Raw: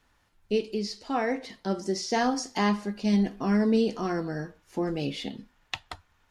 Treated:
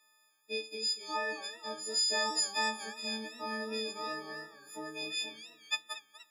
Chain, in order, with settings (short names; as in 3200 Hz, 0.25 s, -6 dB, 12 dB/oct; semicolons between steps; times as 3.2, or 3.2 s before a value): frequency quantiser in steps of 6 st; HPF 450 Hz 12 dB/oct; bell 640 Hz -3 dB 2.4 oct; warbling echo 0.238 s, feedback 43%, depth 160 cents, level -15 dB; gain -7 dB